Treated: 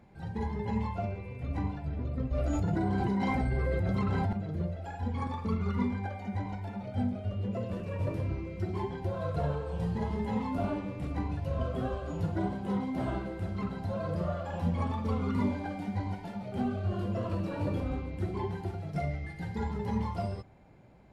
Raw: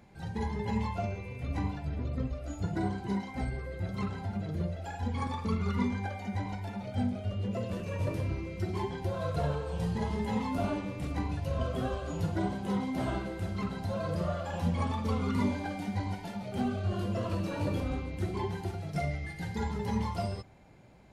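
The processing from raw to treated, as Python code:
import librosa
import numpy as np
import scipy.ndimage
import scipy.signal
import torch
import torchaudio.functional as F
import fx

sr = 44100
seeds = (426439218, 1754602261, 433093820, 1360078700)

y = fx.high_shelf(x, sr, hz=2700.0, db=-9.5)
y = fx.notch(y, sr, hz=6300.0, q=25.0)
y = fx.env_flatten(y, sr, amount_pct=100, at=(2.31, 4.33))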